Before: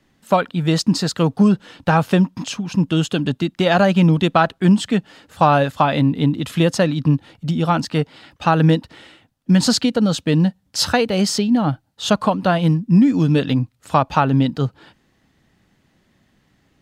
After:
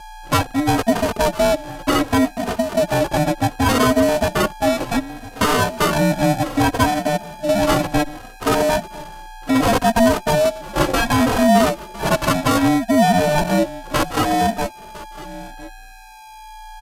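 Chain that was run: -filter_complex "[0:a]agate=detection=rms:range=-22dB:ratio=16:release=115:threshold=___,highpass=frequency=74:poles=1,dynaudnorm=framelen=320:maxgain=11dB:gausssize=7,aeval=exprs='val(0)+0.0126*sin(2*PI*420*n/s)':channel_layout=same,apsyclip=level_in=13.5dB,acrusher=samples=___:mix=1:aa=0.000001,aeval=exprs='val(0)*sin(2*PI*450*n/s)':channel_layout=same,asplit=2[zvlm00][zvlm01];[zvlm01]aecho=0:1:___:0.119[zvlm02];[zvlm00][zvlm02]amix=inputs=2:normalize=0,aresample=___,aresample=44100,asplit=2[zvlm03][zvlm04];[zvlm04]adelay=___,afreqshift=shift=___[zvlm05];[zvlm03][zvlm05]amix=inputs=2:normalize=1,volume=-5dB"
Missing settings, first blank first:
-52dB, 27, 1006, 32000, 3, -0.66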